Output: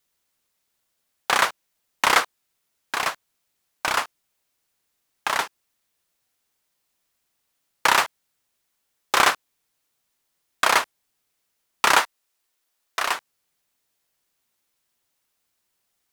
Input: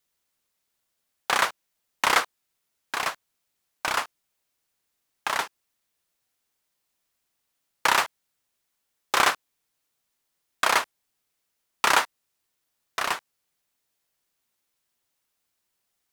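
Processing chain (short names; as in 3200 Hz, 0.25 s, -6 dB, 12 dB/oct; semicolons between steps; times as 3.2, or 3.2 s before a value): 12–13.15 bell 120 Hz -14.5 dB 1.7 oct; gain +3 dB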